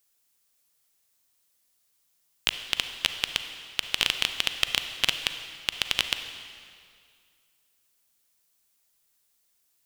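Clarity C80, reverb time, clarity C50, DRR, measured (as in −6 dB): 9.0 dB, 2.2 s, 8.0 dB, 7.5 dB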